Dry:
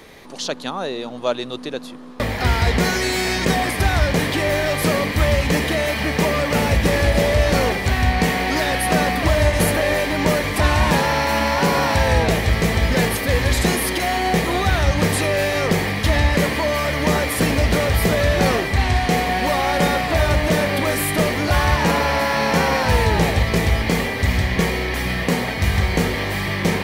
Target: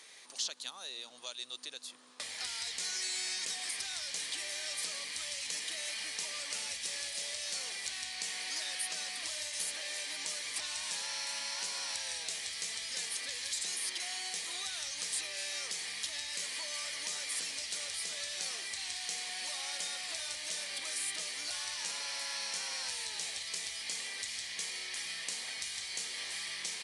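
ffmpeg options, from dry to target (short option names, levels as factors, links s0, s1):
-filter_complex "[0:a]acrossover=split=3100|6800[s0][s1][s2];[s0]acompressor=threshold=0.0316:ratio=4[s3];[s1]acompressor=threshold=0.02:ratio=4[s4];[s2]acompressor=threshold=0.00794:ratio=4[s5];[s3][s4][s5]amix=inputs=3:normalize=0,aderivative,aresample=22050,aresample=44100"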